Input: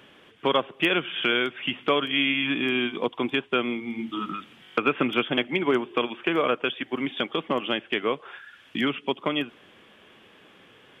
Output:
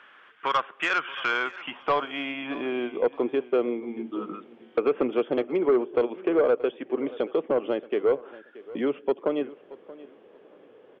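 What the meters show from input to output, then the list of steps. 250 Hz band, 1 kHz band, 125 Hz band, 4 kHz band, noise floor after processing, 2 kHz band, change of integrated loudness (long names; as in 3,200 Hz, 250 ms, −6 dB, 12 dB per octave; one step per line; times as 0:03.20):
−2.5 dB, −1.0 dB, −9.5 dB, −11.5 dB, −54 dBFS, −5.0 dB, −1.0 dB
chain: band-pass filter sweep 1,400 Hz → 470 Hz, 0:00.76–0:03.25
sine wavefolder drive 4 dB, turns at −15.5 dBFS
repeating echo 628 ms, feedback 23%, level −19 dB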